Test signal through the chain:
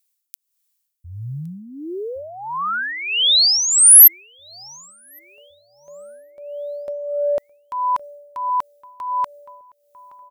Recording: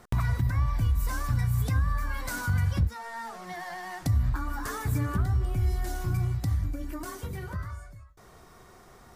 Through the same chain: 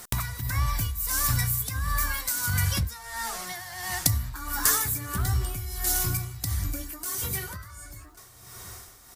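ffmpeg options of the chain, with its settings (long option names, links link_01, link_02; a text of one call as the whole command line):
ffmpeg -i in.wav -filter_complex "[0:a]asplit=2[link_01][link_02];[link_02]adelay=1114,lowpass=frequency=1900:poles=1,volume=-19dB,asplit=2[link_03][link_04];[link_04]adelay=1114,lowpass=frequency=1900:poles=1,volume=0.51,asplit=2[link_05][link_06];[link_06]adelay=1114,lowpass=frequency=1900:poles=1,volume=0.51,asplit=2[link_07][link_08];[link_08]adelay=1114,lowpass=frequency=1900:poles=1,volume=0.51[link_09];[link_01][link_03][link_05][link_07][link_09]amix=inputs=5:normalize=0,crystalizer=i=9.5:c=0,tremolo=f=1.5:d=0.71" out.wav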